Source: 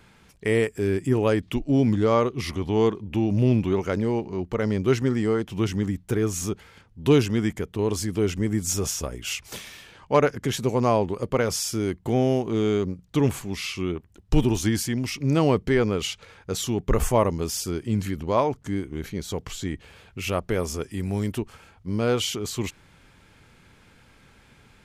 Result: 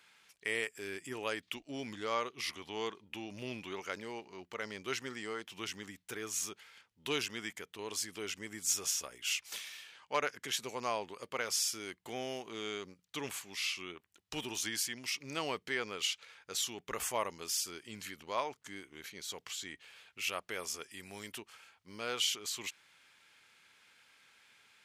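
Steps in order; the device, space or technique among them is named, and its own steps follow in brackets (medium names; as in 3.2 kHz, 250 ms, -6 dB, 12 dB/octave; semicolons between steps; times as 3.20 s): filter by subtraction (in parallel: low-pass 2.7 kHz 12 dB/octave + polarity flip); on the sum: trim -5.5 dB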